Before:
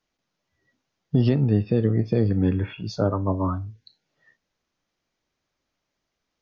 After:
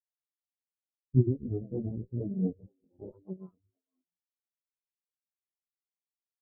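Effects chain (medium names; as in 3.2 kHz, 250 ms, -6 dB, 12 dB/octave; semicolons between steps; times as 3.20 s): coarse spectral quantiser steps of 30 dB; low-pass 2.4 kHz 6 dB/octave; de-hum 148.5 Hz, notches 35; chorus 0.88 Hz, delay 15.5 ms, depth 7.4 ms; on a send: frequency-shifting echo 465 ms, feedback 46%, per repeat +77 Hz, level -8.5 dB; on the sum: Chebyshev shaper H 6 -8 dB, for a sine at -11 dBFS; spectral contrast expander 4:1; trim -4 dB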